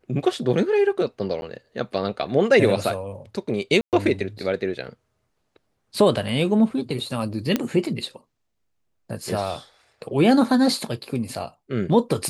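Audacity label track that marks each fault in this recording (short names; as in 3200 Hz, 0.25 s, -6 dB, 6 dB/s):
1.410000	1.420000	gap
3.810000	3.930000	gap 0.118 s
7.560000	7.560000	pop -7 dBFS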